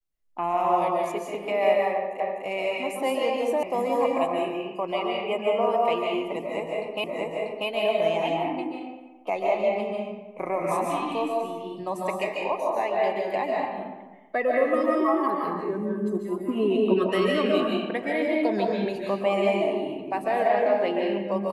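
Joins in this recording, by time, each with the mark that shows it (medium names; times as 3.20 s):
2.20 s: repeat of the last 0.25 s
3.63 s: sound stops dead
7.04 s: repeat of the last 0.64 s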